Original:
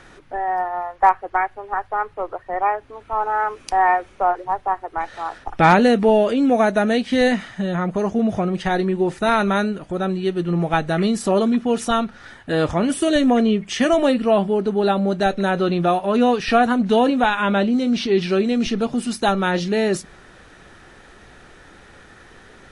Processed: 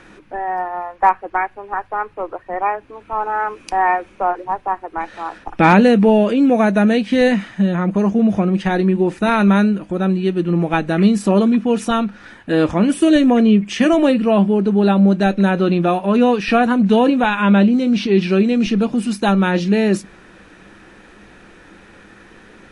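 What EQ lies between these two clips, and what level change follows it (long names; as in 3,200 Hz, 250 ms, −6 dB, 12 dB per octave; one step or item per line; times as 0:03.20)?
thirty-one-band graphic EQ 200 Hz +11 dB, 315 Hz +9 dB, 500 Hz +4 dB, 1,000 Hz +4 dB, 1,600 Hz +3 dB, 2,500 Hz +7 dB
−1.5 dB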